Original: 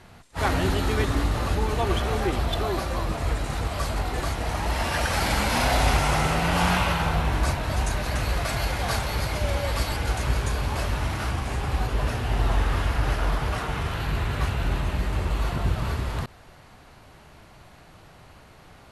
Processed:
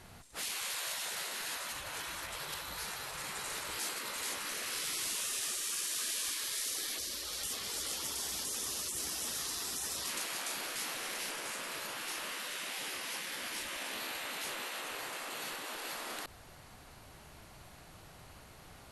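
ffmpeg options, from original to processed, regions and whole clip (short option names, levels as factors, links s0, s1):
-filter_complex "[0:a]asettb=1/sr,asplit=3[s0][s1][s2];[s0]atrim=end=1.714[s3];[s1]atrim=start=1.71:end=3.79,asetpts=PTS-STARTPTS,afade=t=in:d=0.004:c=qsin,afade=t=out:st=2.076:d=0.004:c=qsin,lowshelf=f=160:t=q:w=3:g=-10.5,acompressor=threshold=0.0501:ratio=3:attack=3.2:release=140:knee=1:detection=peak[s4];[s2]atrim=start=3.786[s5];[s3][s4]acrossfade=d=0.004:c1=hsin:c2=qsin[s6];[s6][s5]acrossfade=d=0.004:c1=qsin:c2=hsin,asettb=1/sr,asplit=3[s7][s8][s9];[s7]atrim=end=6.984[s10];[s8]atrim=start=6.98:end=10.08,asetpts=PTS-STARTPTS,afade=t=in:d=0.004:c=qsin,afade=t=out:st=3.096:d=0.004:c=qsin,highpass=f=120:w=0.5412,highpass=f=120:w=1.3066,equalizer=f=2600:w=0.56:g=10.5[s11];[s9]atrim=start=10.076[s12];[s10][s11]acrossfade=d=0.004:c1=hsin:c2=qsin[s13];[s13][s12]acrossfade=d=0.004:c1=qsin:c2=hsin,asettb=1/sr,asplit=3[s14][s15][s16];[s14]atrim=end=11.944[s17];[s15]atrim=start=11.94:end=14.82,asetpts=PTS-STARTPTS,afade=t=in:d=0.004:c=qsin,afade=t=out:st=2.876:d=0.004:c=qsin,bandreject=f=60:t=h:w=6,bandreject=f=120:t=h:w=6,bandreject=f=180:t=h:w=6,bandreject=f=240:t=h:w=6,bandreject=f=300:t=h:w=6,asplit=2[s18][s19];[s19]adelay=24,volume=0.376[s20];[s18][s20]amix=inputs=2:normalize=0,atrim=end_sample=127008[s21];[s16]atrim=start=14.816[s22];[s17][s21]acrossfade=d=0.004:c1=hsin:c2=qsin[s23];[s23][s22]acrossfade=d=0.004:c1=qsin:c2=hsin,highshelf=f=5700:g=12,afftfilt=real='re*lt(hypot(re,im),0.0631)':imag='im*lt(hypot(re,im),0.0631)':win_size=1024:overlap=0.75,volume=0.531"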